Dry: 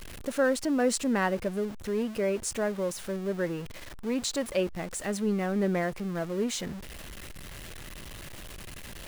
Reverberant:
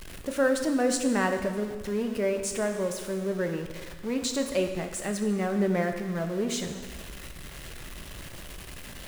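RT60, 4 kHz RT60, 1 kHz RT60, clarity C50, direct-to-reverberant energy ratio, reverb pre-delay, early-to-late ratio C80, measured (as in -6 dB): 1.5 s, 1.4 s, 1.5 s, 7.5 dB, 5.0 dB, 5 ms, 8.5 dB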